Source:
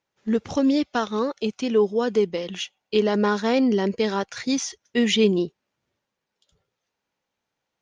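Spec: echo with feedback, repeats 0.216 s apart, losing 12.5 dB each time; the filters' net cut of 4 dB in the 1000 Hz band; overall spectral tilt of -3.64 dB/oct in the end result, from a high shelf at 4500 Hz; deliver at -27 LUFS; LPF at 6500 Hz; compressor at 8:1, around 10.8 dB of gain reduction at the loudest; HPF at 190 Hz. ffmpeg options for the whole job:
-af "highpass=190,lowpass=6.5k,equalizer=f=1k:t=o:g=-5.5,highshelf=f=4.5k:g=5,acompressor=threshold=-27dB:ratio=8,aecho=1:1:216|432|648:0.237|0.0569|0.0137,volume=4.5dB"

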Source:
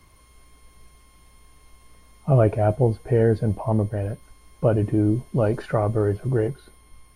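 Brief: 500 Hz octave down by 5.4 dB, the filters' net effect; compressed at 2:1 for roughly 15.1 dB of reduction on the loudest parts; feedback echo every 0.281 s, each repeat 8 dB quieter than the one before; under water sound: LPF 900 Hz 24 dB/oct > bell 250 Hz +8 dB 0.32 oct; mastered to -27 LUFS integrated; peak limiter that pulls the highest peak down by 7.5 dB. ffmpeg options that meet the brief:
-af "equalizer=f=500:t=o:g=-7,acompressor=threshold=-43dB:ratio=2,alimiter=level_in=7dB:limit=-24dB:level=0:latency=1,volume=-7dB,lowpass=f=900:w=0.5412,lowpass=f=900:w=1.3066,equalizer=f=250:t=o:w=0.32:g=8,aecho=1:1:281|562|843|1124|1405:0.398|0.159|0.0637|0.0255|0.0102,volume=13dB"

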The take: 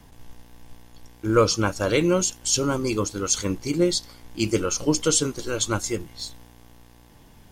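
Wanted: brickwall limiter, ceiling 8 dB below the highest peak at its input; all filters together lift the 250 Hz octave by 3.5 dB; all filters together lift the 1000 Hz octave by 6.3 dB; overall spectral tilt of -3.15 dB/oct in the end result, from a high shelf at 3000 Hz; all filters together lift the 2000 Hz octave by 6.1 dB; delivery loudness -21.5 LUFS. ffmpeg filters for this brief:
-af "equalizer=f=250:t=o:g=4.5,equalizer=f=1k:t=o:g=5.5,equalizer=f=2k:t=o:g=3.5,highshelf=f=3k:g=7,alimiter=limit=-9dB:level=0:latency=1"

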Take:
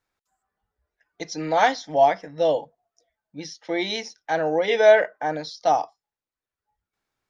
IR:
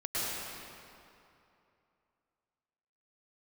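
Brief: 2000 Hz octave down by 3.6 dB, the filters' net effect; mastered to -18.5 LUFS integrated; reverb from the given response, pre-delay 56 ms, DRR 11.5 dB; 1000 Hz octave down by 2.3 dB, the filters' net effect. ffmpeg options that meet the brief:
-filter_complex "[0:a]equalizer=f=1k:t=o:g=-3,equalizer=f=2k:t=o:g=-3.5,asplit=2[a][b];[1:a]atrim=start_sample=2205,adelay=56[c];[b][c]afir=irnorm=-1:irlink=0,volume=-19dB[d];[a][d]amix=inputs=2:normalize=0,volume=5dB"

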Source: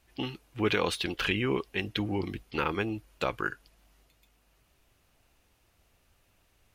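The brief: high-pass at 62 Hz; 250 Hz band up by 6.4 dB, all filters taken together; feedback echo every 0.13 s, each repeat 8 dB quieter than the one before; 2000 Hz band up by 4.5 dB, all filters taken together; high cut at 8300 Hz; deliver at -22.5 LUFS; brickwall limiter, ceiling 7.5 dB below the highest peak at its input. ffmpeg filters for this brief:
-af "highpass=62,lowpass=8.3k,equalizer=f=250:t=o:g=8.5,equalizer=f=2k:t=o:g=6,alimiter=limit=-15.5dB:level=0:latency=1,aecho=1:1:130|260|390|520|650:0.398|0.159|0.0637|0.0255|0.0102,volume=6dB"

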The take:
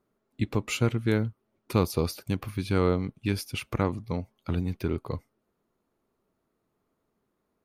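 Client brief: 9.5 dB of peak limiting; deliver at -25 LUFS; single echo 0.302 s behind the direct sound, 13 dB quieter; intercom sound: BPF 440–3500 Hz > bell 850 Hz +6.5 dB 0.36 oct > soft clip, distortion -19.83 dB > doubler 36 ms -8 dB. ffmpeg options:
-filter_complex "[0:a]alimiter=limit=-19dB:level=0:latency=1,highpass=440,lowpass=3.5k,equalizer=f=850:t=o:w=0.36:g=6.5,aecho=1:1:302:0.224,asoftclip=threshold=-23dB,asplit=2[a][b];[b]adelay=36,volume=-8dB[c];[a][c]amix=inputs=2:normalize=0,volume=14dB"

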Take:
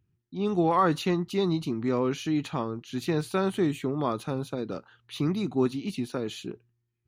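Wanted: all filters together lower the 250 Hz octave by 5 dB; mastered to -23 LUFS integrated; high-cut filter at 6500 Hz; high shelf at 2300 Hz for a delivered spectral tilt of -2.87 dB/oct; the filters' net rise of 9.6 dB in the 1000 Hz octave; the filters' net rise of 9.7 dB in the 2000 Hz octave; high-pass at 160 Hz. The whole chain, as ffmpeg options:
-af "highpass=160,lowpass=6.5k,equalizer=f=250:t=o:g=-7,equalizer=f=1k:t=o:g=9,equalizer=f=2k:t=o:g=8,highshelf=f=2.3k:g=3,volume=2.5dB"

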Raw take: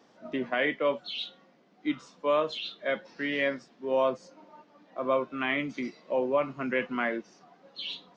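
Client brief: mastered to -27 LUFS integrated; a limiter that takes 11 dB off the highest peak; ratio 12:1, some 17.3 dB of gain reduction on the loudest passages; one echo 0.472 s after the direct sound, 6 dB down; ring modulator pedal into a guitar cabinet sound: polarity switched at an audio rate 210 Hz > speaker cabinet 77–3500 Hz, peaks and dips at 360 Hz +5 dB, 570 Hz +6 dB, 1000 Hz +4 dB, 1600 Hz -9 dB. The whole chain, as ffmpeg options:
-af "acompressor=threshold=-39dB:ratio=12,alimiter=level_in=13dB:limit=-24dB:level=0:latency=1,volume=-13dB,aecho=1:1:472:0.501,aeval=exprs='val(0)*sgn(sin(2*PI*210*n/s))':c=same,highpass=77,equalizer=f=360:t=q:w=4:g=5,equalizer=f=570:t=q:w=4:g=6,equalizer=f=1k:t=q:w=4:g=4,equalizer=f=1.6k:t=q:w=4:g=-9,lowpass=f=3.5k:w=0.5412,lowpass=f=3.5k:w=1.3066,volume=19dB"

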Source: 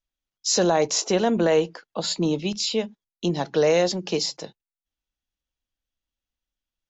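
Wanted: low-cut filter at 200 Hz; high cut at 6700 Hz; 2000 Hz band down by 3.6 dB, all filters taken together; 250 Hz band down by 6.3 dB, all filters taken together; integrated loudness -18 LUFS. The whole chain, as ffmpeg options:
-af "highpass=200,lowpass=6.7k,equalizer=f=250:t=o:g=-7.5,equalizer=f=2k:t=o:g=-4.5,volume=8dB"

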